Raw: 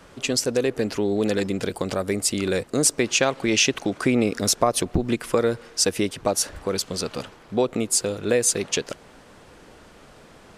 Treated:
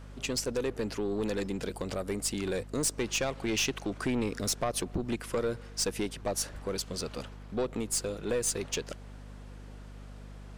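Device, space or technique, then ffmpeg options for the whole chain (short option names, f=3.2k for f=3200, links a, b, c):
valve amplifier with mains hum: -af "aeval=exprs='(tanh(6.31*val(0)+0.2)-tanh(0.2))/6.31':c=same,aeval=exprs='val(0)+0.0126*(sin(2*PI*50*n/s)+sin(2*PI*2*50*n/s)/2+sin(2*PI*3*50*n/s)/3+sin(2*PI*4*50*n/s)/4+sin(2*PI*5*50*n/s)/5)':c=same,volume=-7dB"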